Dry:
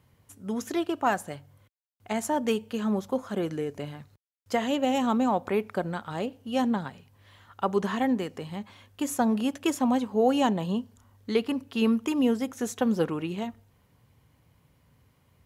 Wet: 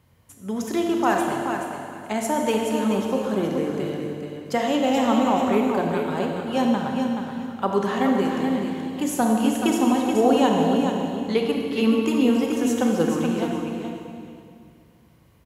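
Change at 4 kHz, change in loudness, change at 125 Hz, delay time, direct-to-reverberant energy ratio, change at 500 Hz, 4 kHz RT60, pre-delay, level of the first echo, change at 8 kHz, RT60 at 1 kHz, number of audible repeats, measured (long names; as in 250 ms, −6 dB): +5.5 dB, +5.5 dB, +5.5 dB, 427 ms, −0.5 dB, +6.0 dB, 2.2 s, 28 ms, −6.5 dB, +5.5 dB, 2.3 s, 2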